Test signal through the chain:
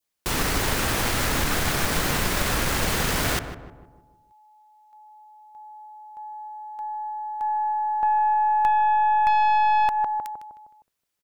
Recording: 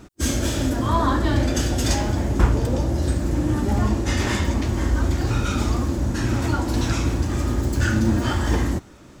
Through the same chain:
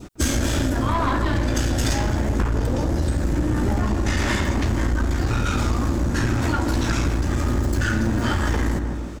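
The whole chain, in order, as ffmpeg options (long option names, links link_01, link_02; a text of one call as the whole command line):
ffmpeg -i in.wav -filter_complex "[0:a]asplit=2[link_01][link_02];[link_02]adelay=155,lowpass=frequency=1400:poles=1,volume=-9.5dB,asplit=2[link_03][link_04];[link_04]adelay=155,lowpass=frequency=1400:poles=1,volume=0.5,asplit=2[link_05][link_06];[link_06]adelay=155,lowpass=frequency=1400:poles=1,volume=0.5,asplit=2[link_07][link_08];[link_08]adelay=155,lowpass=frequency=1400:poles=1,volume=0.5,asplit=2[link_09][link_10];[link_10]adelay=155,lowpass=frequency=1400:poles=1,volume=0.5,asplit=2[link_11][link_12];[link_12]adelay=155,lowpass=frequency=1400:poles=1,volume=0.5[link_13];[link_01][link_03][link_05][link_07][link_09][link_11][link_13]amix=inputs=7:normalize=0,adynamicequalizer=threshold=0.01:dfrequency=1600:dqfactor=1.3:tfrequency=1600:tqfactor=1.3:attack=5:release=100:ratio=0.375:range=2:mode=boostabove:tftype=bell,aeval=exprs='(tanh(5.62*val(0)+0.4)-tanh(0.4))/5.62':channel_layout=same,acompressor=threshold=-25dB:ratio=6,volume=7.5dB" out.wav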